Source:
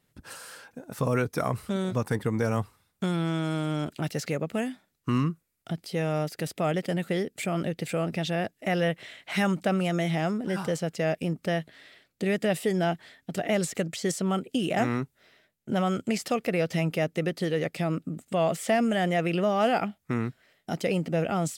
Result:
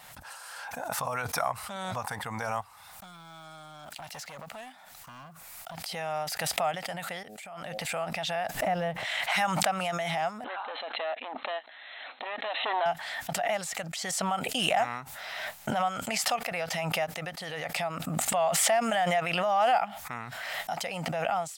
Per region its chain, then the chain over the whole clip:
0:02.61–0:05.87: one scale factor per block 7 bits + downward compressor 12 to 1, threshold −28 dBFS + gain into a clipping stage and back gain 32 dB
0:07.23–0:07.85: hum removal 106.4 Hz, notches 7 + downward compressor 4 to 1, threshold −40 dBFS
0:08.54–0:09.05: mu-law and A-law mismatch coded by mu + tilt shelving filter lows +9 dB, about 720 Hz
0:10.44–0:12.86: hard clipping −25.5 dBFS + linear-phase brick-wall band-pass 230–4,200 Hz
whole clip: de-essing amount 60%; low shelf with overshoot 540 Hz −12.5 dB, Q 3; background raised ahead of every attack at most 25 dB per second; level −3.5 dB

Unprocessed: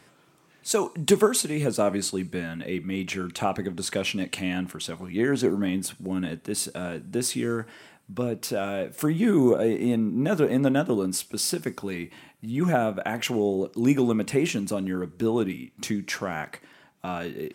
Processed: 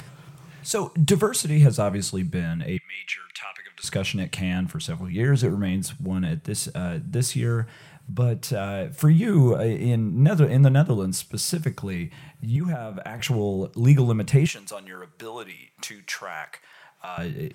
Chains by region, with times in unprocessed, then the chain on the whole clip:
0:02.77–0:03.84: high-pass with resonance 2,100 Hz, resonance Q 2.2 + high-shelf EQ 5,000 Hz −11 dB
0:12.56–0:13.20: high-pass filter 150 Hz + downward compressor 4 to 1, threshold −30 dBFS
0:14.46–0:17.18: high-pass filter 730 Hz + one half of a high-frequency compander decoder only
whole clip: low shelf with overshoot 190 Hz +9 dB, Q 3; upward compression, threshold −35 dBFS

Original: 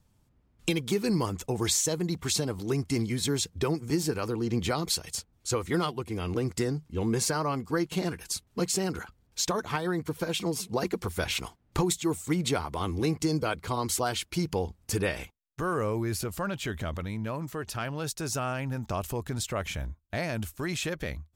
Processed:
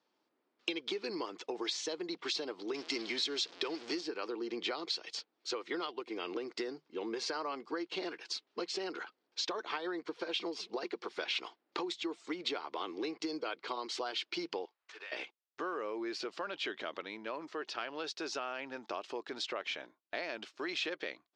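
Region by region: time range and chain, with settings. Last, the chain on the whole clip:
0:02.74–0:04.01: converter with a step at zero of −36.5 dBFS + Butterworth low-pass 9,200 Hz 72 dB per octave + high-shelf EQ 2,800 Hz +9.5 dB
0:14.65–0:15.12: running median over 9 samples + high-pass filter 1,200 Hz + downward compressor, threshold −43 dBFS
whole clip: elliptic band-pass filter 330–4,900 Hz, stop band 60 dB; downward compressor, threshold −33 dBFS; dynamic equaliser 3,100 Hz, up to +5 dB, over −54 dBFS, Q 1.3; level −2 dB

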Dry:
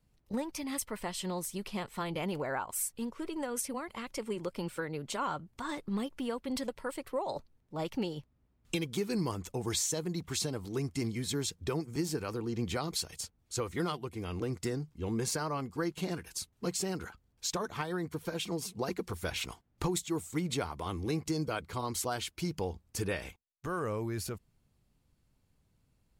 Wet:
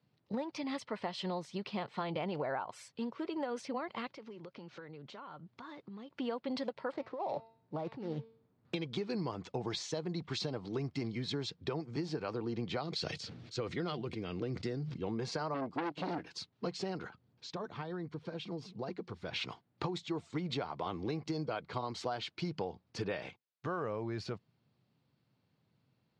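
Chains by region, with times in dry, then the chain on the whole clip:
0:04.08–0:06.10: downward compressor, threshold −46 dBFS + linearly interpolated sample-rate reduction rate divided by 3×
0:06.92–0:08.74: running median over 15 samples + hum removal 225.3 Hz, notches 24 + compressor whose output falls as the input rises −39 dBFS
0:12.83–0:15.02: parametric band 920 Hz −8 dB 0.97 octaves + level that may fall only so fast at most 43 dB per second
0:15.54–0:16.30: parametric band 290 Hz +13.5 dB 0.37 octaves + saturating transformer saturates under 1,500 Hz
0:17.07–0:19.33: low-shelf EQ 490 Hz +6.5 dB + downward compressor 1.5 to 1, threshold −56 dBFS
whole clip: Chebyshev band-pass filter 120–4,500 Hz, order 3; dynamic equaliser 690 Hz, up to +5 dB, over −48 dBFS, Q 1.7; downward compressor, threshold −34 dBFS; level +1 dB

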